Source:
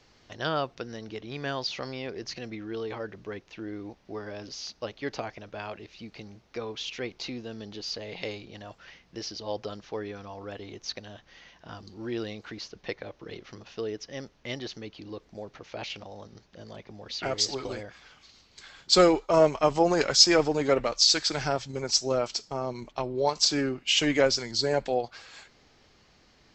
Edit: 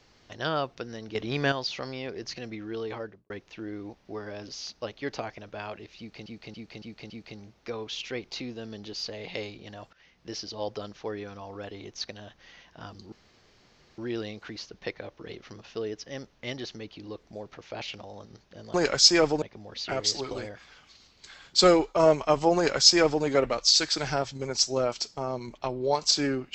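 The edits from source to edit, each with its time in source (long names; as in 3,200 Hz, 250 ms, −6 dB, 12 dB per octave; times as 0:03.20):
0:01.15–0:01.52: clip gain +7.5 dB
0:02.95–0:03.30: fade out and dull
0:05.98–0:06.26: repeat, 5 plays
0:08.81–0:09.19: fade in, from −20 dB
0:12.00: splice in room tone 0.86 s
0:19.90–0:20.58: duplicate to 0:16.76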